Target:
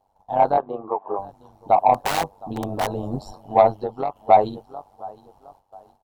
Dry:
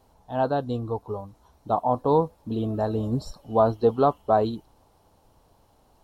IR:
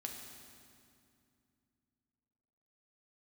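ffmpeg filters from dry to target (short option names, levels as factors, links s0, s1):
-filter_complex "[0:a]aecho=1:1:712|1424:0.075|0.0232,agate=range=0.251:threshold=0.00158:ratio=16:detection=peak,asettb=1/sr,asplit=3[s0][s1][s2];[s0]atrim=end=0.574[s3];[s1]atrim=start=0.57:end=1.19,asetpts=PTS-STARTPTS,afade=t=in:d=0.004:c=qsin,afade=t=out:st=0.616:d=0.004:c=qsin,highpass=f=210:w=0.5412,highpass=f=210:w=1.3066,equalizer=f=260:t=q:w=4:g=-8,equalizer=f=390:t=q:w=4:g=7,equalizer=f=1100:t=q:w=4:g=9,lowpass=f=2400:w=0.5412,lowpass=f=2400:w=1.3066[s4];[s2]atrim=start=1.186[s5];[s3][s4]acrossfade=d=0.004:c1=hsin:c2=qsin[s6];[s6][s5]acrossfade=d=0.004:c1=qsin:c2=hsin,asettb=1/sr,asplit=3[s7][s8][s9];[s7]atrim=end=1.944[s10];[s8]atrim=start=1.94:end=2.91,asetpts=PTS-STARTPTS,afade=t=in:d=0.004:c=qsin,afade=t=out:st=0.966:d=0.004:c=qsin,aeval=exprs='(mod(9.44*val(0)+1,2)-1)/9.44':c=same[s11];[s9]atrim=start=2.906[s12];[s10][s11]acrossfade=d=0.004:c1=hsin:c2=qsin[s13];[s13][s12]acrossfade=d=0.004:c1=qsin:c2=hsin,equalizer=f=780:t=o:w=0.71:g=14.5,aeval=exprs='1.19*(cos(1*acos(clip(val(0)/1.19,-1,1)))-cos(1*PI/2))+0.0596*(cos(5*acos(clip(val(0)/1.19,-1,1)))-cos(5*PI/2))':c=same,tremolo=f=97:d=0.75,asettb=1/sr,asplit=3[s14][s15][s16];[s14]atrim=end=3.694[s17];[s15]atrim=start=3.69:end=4.16,asetpts=PTS-STARTPTS,afade=t=in:d=0.004:c=qsin,afade=t=out:st=0.466:d=0.004:c=qsin,acompressor=threshold=0.0501:ratio=2.5[s18];[s16]atrim=start=4.156[s19];[s17][s18]acrossfade=d=0.004:c1=hsin:c2=qsin[s20];[s20][s19]acrossfade=d=0.004:c1=qsin:c2=hsin,volume=0.841"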